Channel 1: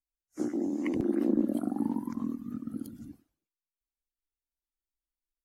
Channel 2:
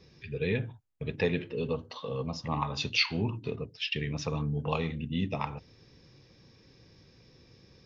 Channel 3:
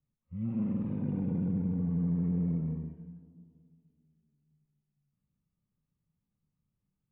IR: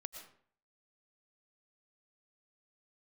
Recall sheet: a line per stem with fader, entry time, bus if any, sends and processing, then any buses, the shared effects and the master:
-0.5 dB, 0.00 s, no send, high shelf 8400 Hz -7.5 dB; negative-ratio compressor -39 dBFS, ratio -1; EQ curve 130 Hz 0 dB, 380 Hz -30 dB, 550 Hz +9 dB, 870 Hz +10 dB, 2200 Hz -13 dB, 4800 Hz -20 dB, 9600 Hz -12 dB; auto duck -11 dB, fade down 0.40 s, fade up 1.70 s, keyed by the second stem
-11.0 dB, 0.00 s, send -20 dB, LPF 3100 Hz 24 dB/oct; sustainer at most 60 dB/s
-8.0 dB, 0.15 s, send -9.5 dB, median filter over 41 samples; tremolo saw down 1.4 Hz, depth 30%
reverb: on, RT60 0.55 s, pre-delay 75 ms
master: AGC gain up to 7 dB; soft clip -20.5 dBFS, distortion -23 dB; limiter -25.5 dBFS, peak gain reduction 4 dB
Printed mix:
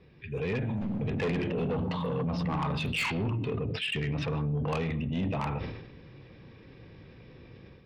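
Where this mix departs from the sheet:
stem 1 -0.5 dB -> +6.5 dB; stem 2 -11.0 dB -> -0.5 dB; reverb return +8.5 dB

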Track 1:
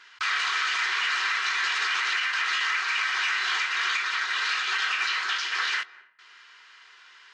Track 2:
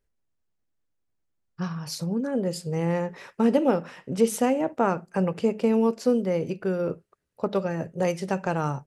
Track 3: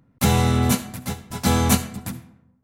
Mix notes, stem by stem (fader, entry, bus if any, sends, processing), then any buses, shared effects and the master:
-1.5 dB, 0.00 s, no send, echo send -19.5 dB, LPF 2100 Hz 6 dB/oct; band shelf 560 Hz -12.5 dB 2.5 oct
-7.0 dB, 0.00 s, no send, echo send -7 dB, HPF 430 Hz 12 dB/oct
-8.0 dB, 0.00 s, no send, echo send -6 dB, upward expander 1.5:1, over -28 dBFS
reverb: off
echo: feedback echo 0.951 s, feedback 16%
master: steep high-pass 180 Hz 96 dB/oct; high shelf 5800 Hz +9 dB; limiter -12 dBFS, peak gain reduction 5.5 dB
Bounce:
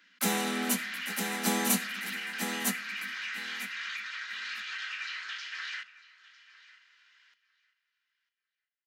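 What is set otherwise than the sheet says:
stem 1 -1.5 dB -> -8.0 dB; stem 2: muted

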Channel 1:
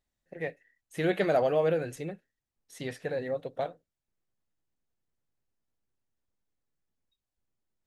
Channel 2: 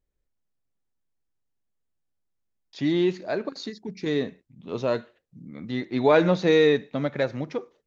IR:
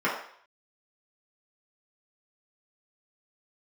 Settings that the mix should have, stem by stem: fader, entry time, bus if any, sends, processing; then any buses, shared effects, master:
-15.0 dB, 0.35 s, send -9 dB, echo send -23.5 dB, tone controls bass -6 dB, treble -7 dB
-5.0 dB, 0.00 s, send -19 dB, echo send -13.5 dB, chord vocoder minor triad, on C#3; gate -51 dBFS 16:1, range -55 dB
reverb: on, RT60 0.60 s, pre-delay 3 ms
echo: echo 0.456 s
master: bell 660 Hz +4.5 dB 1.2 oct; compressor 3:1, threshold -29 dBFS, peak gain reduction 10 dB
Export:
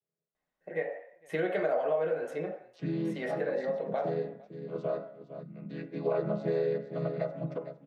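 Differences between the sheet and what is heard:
stem 1 -15.0 dB -> -4.0 dB; stem 2: missing gate -51 dBFS 16:1, range -55 dB

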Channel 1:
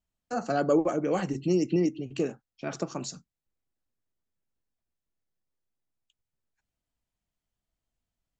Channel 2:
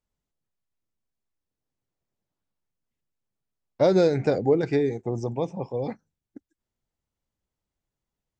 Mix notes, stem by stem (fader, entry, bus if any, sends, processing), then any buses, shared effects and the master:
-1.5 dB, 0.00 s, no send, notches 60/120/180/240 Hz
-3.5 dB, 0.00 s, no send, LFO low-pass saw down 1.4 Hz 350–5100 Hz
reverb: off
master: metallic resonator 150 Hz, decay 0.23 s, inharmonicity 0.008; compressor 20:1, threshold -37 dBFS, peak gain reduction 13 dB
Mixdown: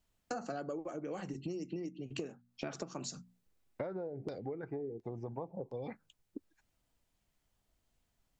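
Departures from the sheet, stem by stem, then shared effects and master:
stem 1 -1.5 dB -> +7.5 dB; master: missing metallic resonator 150 Hz, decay 0.23 s, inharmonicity 0.008

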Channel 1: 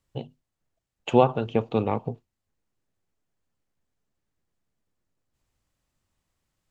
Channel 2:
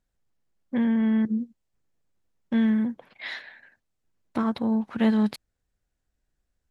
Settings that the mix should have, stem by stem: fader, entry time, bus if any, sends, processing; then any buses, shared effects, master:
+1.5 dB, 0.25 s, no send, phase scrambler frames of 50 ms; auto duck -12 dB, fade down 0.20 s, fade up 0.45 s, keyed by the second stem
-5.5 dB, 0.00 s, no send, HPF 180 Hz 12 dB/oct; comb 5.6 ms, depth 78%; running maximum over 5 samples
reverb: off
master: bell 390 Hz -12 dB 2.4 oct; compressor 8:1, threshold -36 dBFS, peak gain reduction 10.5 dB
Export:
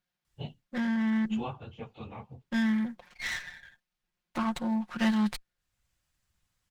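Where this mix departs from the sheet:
stem 2 -5.5 dB -> +2.0 dB; master: missing compressor 8:1, threshold -36 dBFS, peak gain reduction 10.5 dB

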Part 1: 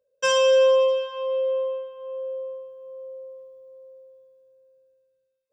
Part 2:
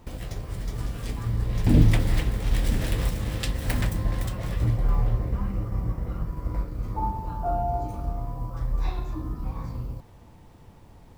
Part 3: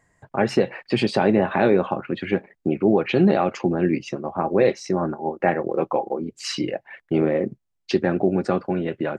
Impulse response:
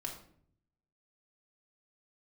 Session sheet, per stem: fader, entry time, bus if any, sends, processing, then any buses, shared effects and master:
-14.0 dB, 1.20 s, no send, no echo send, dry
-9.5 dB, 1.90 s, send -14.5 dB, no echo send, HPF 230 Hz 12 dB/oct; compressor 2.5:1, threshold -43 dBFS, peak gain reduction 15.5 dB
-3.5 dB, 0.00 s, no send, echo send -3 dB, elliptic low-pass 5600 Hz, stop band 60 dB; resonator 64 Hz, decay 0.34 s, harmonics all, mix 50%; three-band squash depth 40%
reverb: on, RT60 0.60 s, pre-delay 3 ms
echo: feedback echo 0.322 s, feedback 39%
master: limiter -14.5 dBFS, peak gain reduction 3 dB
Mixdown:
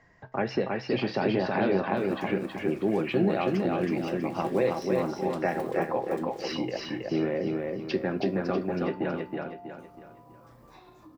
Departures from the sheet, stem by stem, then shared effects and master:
stem 1: muted; master: missing limiter -14.5 dBFS, peak gain reduction 3 dB

